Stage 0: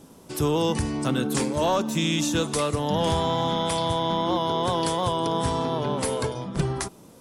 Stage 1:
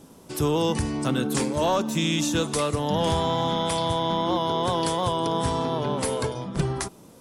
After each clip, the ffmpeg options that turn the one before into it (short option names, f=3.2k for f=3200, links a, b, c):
-af anull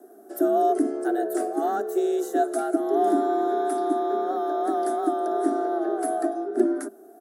-af "firequalizer=gain_entry='entry(190,0);entry(290,-23);entry(490,2);entry(710,-25);entry(1300,-7);entry(2200,-29);entry(13000,-4)':delay=0.05:min_phase=1,afreqshift=210,volume=5dB"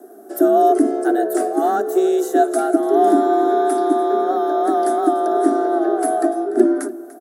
-af "aecho=1:1:293:0.133,volume=7.5dB"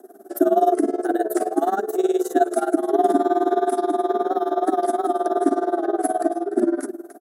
-af "tremolo=f=19:d=0.88"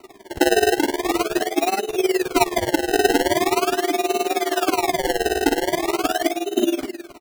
-af "acrusher=samples=26:mix=1:aa=0.000001:lfo=1:lforange=26:lforate=0.42"